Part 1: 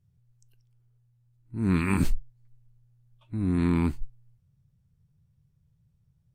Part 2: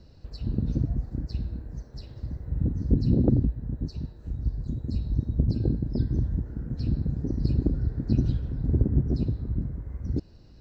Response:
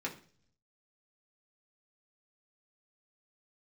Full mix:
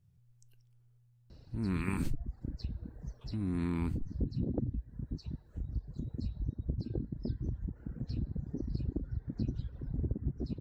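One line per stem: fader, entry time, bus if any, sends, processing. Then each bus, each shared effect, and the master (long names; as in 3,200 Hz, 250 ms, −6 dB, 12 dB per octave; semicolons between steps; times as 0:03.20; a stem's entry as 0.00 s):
−0.5 dB, 0.00 s, no send, no processing
−2.0 dB, 1.30 s, no send, reverb reduction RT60 1.3 s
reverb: not used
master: downward compressor 2 to 1, threshold −37 dBFS, peak gain reduction 11.5 dB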